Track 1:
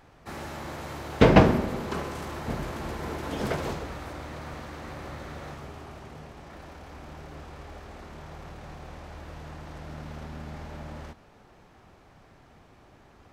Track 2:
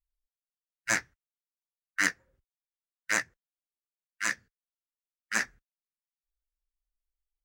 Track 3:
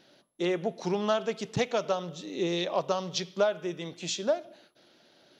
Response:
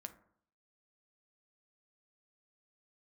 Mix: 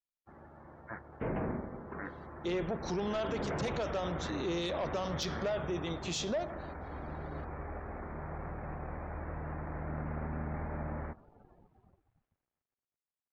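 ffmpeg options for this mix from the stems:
-filter_complex "[0:a]lowpass=f=2.2k:w=0.5412,lowpass=f=2.2k:w=1.3066,dynaudnorm=f=210:g=17:m=15.5dB,aeval=exprs='sgn(val(0))*max(abs(val(0))-0.00376,0)':c=same,volume=-13dB[a];[1:a]lowpass=f=1.3k:w=0.5412,lowpass=f=1.3k:w=1.3066,volume=-9.5dB[b];[2:a]asoftclip=type=tanh:threshold=-23.5dB,adelay=2050,volume=1.5dB[c];[a][b][c]amix=inputs=3:normalize=0,afftdn=nr=19:nf=-55,alimiter=level_in=3.5dB:limit=-24dB:level=0:latency=1:release=14,volume=-3.5dB"

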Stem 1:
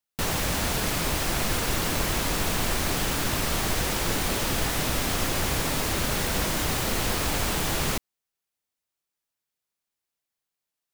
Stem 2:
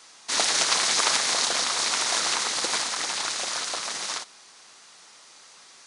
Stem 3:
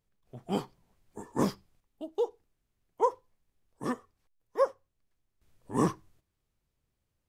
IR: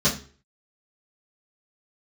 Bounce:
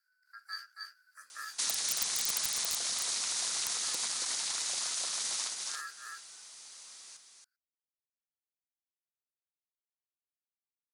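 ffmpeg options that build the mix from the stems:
-filter_complex "[1:a]aeval=exprs='(mod(3.55*val(0)+1,2)-1)/3.55':c=same,adelay=1300,volume=-11.5dB,asplit=2[a][b];[b]volume=-6dB[c];[2:a]firequalizer=gain_entry='entry(130,0);entry(500,-24);entry(1900,-24);entry(3100,13);entry(4500,-8)':delay=0.05:min_phase=1,acompressor=threshold=-46dB:ratio=1.5,aeval=exprs='val(0)*sin(2*PI*1500*n/s)':c=same,volume=-2.5dB,asplit=2[d][e];[e]volume=-5.5dB[f];[c][f]amix=inputs=2:normalize=0,aecho=0:1:276:1[g];[a][d][g]amix=inputs=3:normalize=0,acrossover=split=190[h][i];[i]acompressor=threshold=-41dB:ratio=6[j];[h][j]amix=inputs=2:normalize=0,crystalizer=i=4:c=0"

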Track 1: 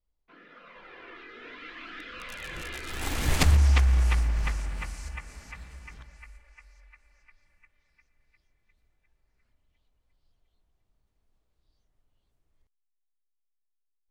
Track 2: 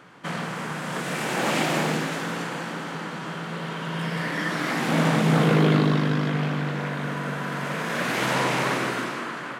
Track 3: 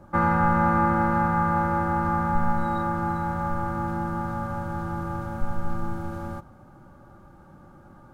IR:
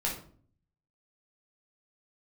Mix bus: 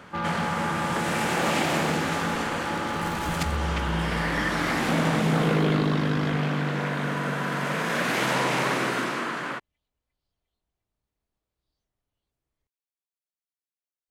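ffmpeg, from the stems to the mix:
-filter_complex "[0:a]volume=-5dB[a];[1:a]volume=2.5dB[b];[2:a]asoftclip=type=tanh:threshold=-22dB,volume=-3dB[c];[a][b][c]amix=inputs=3:normalize=0,highpass=f=86:p=1,acompressor=threshold=-23dB:ratio=2"

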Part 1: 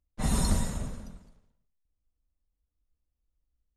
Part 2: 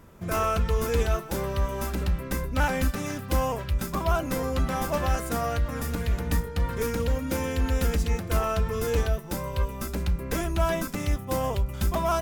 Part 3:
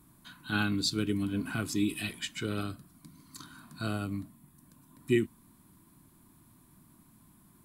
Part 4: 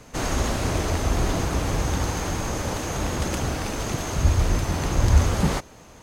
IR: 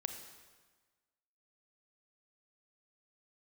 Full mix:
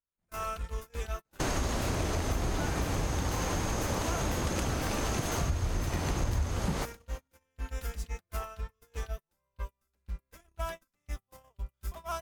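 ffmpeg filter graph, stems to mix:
-filter_complex "[0:a]acompressor=threshold=-32dB:ratio=6,asoftclip=type=tanh:threshold=-39dB,volume=-6.5dB[a];[1:a]equalizer=f=210:t=o:w=2.8:g=-11.5,volume=-6.5dB[b];[2:a]aeval=exprs='0.188*(cos(1*acos(clip(val(0)/0.188,-1,1)))-cos(1*PI/2))+0.0531*(cos(3*acos(clip(val(0)/0.188,-1,1)))-cos(3*PI/2))':c=same,lowshelf=f=350:g=-9,adelay=800,volume=-4.5dB[c];[3:a]adelay=1250,volume=-1dB[d];[a][b][c][d]amix=inputs=4:normalize=0,agate=range=-38dB:threshold=-34dB:ratio=16:detection=peak,acompressor=threshold=-27dB:ratio=6"

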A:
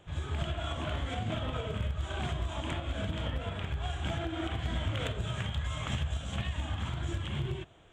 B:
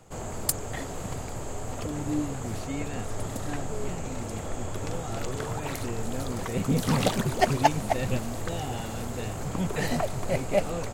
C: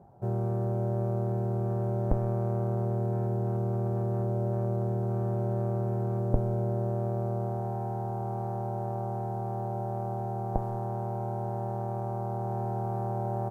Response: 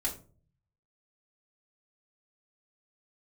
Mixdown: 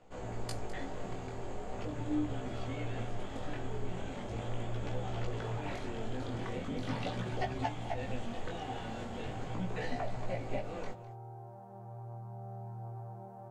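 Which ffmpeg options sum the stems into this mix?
-filter_complex "[0:a]alimiter=level_in=6.5dB:limit=-24dB:level=0:latency=1,volume=-6.5dB,adelay=1900,volume=-6.5dB[a];[1:a]lowpass=3.7k,equalizer=f=1.2k:t=o:w=0.31:g=-3.5,acompressor=threshold=-27dB:ratio=4,volume=-5dB,asplit=3[b][c][d];[c]volume=-8.5dB[e];[d]volume=-13.5dB[f];[2:a]asubboost=boost=3.5:cutoff=130,highpass=f=86:w=0.5412,highpass=f=86:w=1.3066,volume=-11.5dB[g];[3:a]atrim=start_sample=2205[h];[e][h]afir=irnorm=-1:irlink=0[i];[f]aecho=0:1:205:1[j];[a][b][g][i][j]amix=inputs=5:normalize=0,lowshelf=f=280:g=-4.5,flanger=delay=15.5:depth=7.8:speed=0.4"

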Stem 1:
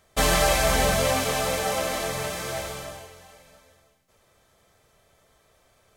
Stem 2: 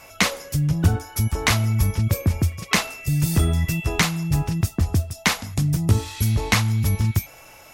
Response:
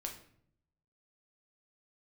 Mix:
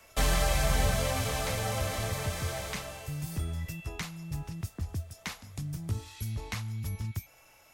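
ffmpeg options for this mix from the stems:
-filter_complex "[0:a]volume=1dB[a];[1:a]volume=-12.5dB[b];[a][b]amix=inputs=2:normalize=0,equalizer=f=250:w=0.32:g=-2.5,acrossover=split=160[c][d];[d]acompressor=threshold=-45dB:ratio=1.5[e];[c][e]amix=inputs=2:normalize=0"

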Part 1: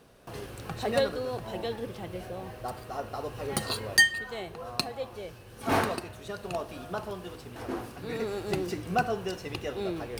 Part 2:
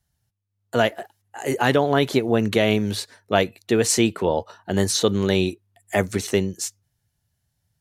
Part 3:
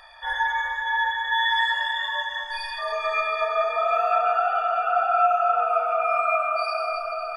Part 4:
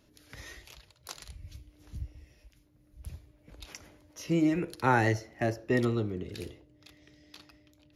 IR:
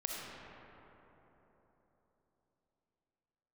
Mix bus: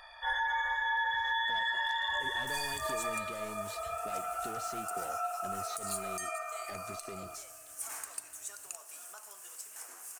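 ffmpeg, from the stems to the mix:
-filter_complex "[0:a]acompressor=threshold=-37dB:ratio=3,highpass=1.4k,highshelf=f=5.4k:t=q:w=3:g=12.5,adelay=2200,volume=-4.5dB,asplit=2[a][b];[b]volume=-13dB[c];[1:a]asoftclip=type=hard:threshold=-20dB,acompressor=threshold=-29dB:ratio=6,adelay=750,volume=-15dB[d];[2:a]volume=-5.5dB,afade=t=out:st=2.62:d=0.72:silence=0.237137,asplit=2[e][f];[f]volume=-13dB[g];[3:a]adelay=800,volume=-13dB,asplit=3[h][i][j];[h]atrim=end=5.09,asetpts=PTS-STARTPTS,afade=t=out:st=5.086:d=0.004:c=hsin[k];[i]atrim=start=5.09:end=7.22,asetpts=PTS-STARTPTS,volume=0[l];[j]atrim=start=7.22,asetpts=PTS-STARTPTS,afade=t=in:d=0.004:c=hsin[m];[k][l][m]concat=n=3:v=0:a=1[n];[4:a]atrim=start_sample=2205[o];[c][g]amix=inputs=2:normalize=0[p];[p][o]afir=irnorm=-1:irlink=0[q];[a][d][e][n][q]amix=inputs=5:normalize=0,alimiter=limit=-24dB:level=0:latency=1:release=84"

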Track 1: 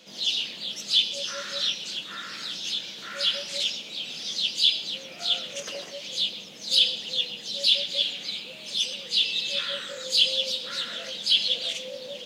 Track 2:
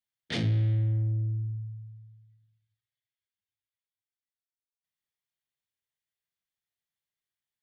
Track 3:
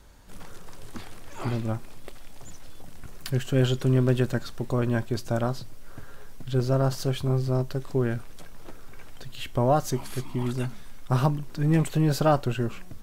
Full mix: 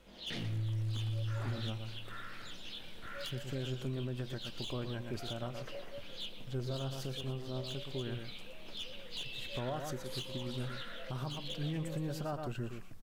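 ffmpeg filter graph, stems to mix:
-filter_complex "[0:a]lowpass=2.1k,aeval=exprs='clip(val(0),-1,0.0282)':c=same,volume=-7.5dB[a];[1:a]volume=-4.5dB,asplit=2[b][c];[c]volume=-17dB[d];[2:a]volume=-11.5dB,asplit=2[e][f];[f]volume=-8dB[g];[a][b]amix=inputs=2:normalize=0,alimiter=level_in=7dB:limit=-24dB:level=0:latency=1:release=166,volume=-7dB,volume=0dB[h];[d][g]amix=inputs=2:normalize=0,aecho=0:1:119:1[i];[e][h][i]amix=inputs=3:normalize=0,alimiter=level_in=5dB:limit=-24dB:level=0:latency=1:release=178,volume=-5dB"

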